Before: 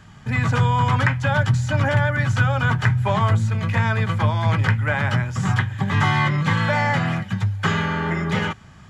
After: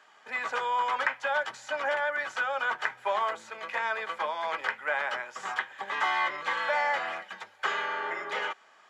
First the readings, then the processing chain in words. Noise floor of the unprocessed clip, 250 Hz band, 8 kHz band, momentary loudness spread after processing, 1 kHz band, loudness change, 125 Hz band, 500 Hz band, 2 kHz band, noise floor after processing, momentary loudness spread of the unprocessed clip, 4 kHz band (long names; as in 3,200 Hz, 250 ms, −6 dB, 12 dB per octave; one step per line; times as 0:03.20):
−45 dBFS, −28.5 dB, can't be measured, 7 LU, −5.5 dB, −10.0 dB, below −40 dB, −6.5 dB, −5.5 dB, −58 dBFS, 4 LU, −7.0 dB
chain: high-pass filter 460 Hz 24 dB per octave
high-shelf EQ 5,700 Hz −9 dB
level −5 dB